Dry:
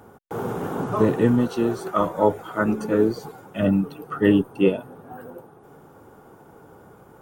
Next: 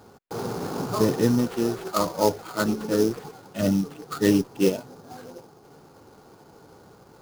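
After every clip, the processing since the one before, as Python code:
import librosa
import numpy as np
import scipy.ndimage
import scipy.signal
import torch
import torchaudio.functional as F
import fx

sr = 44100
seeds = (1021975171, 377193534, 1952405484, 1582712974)

y = fx.sample_hold(x, sr, seeds[0], rate_hz=5700.0, jitter_pct=20)
y = y * librosa.db_to_amplitude(-2.5)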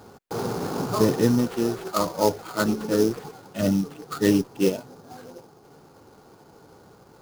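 y = fx.rider(x, sr, range_db=4, speed_s=2.0)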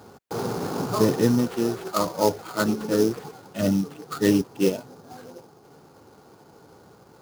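y = scipy.signal.sosfilt(scipy.signal.butter(2, 57.0, 'highpass', fs=sr, output='sos'), x)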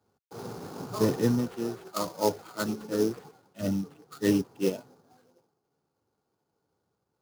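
y = fx.band_widen(x, sr, depth_pct=70)
y = y * librosa.db_to_amplitude(-7.5)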